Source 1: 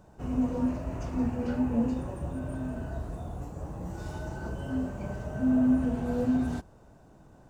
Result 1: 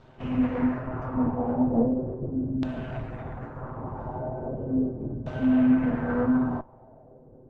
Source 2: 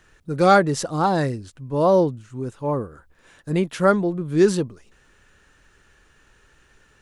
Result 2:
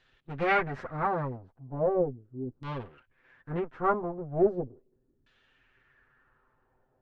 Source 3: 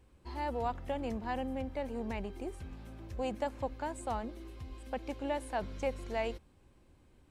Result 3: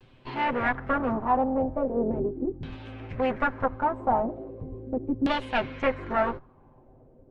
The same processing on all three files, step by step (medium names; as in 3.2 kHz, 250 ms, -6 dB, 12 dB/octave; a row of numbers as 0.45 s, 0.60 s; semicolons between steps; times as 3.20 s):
comb filter that takes the minimum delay 7.8 ms; LFO low-pass saw down 0.38 Hz 270–3800 Hz; peak normalisation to -12 dBFS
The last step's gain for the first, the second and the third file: +3.0 dB, -11.0 dB, +9.0 dB